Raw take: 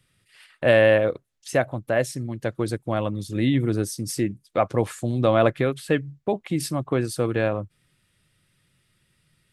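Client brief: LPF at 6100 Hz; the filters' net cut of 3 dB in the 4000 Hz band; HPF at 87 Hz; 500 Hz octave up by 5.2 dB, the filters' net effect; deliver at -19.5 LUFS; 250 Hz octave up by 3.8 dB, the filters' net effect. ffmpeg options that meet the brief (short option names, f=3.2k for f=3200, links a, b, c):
-af "highpass=87,lowpass=6.1k,equalizer=f=250:t=o:g=3,equalizer=f=500:t=o:g=5.5,equalizer=f=4k:t=o:g=-3.5,volume=0.5dB"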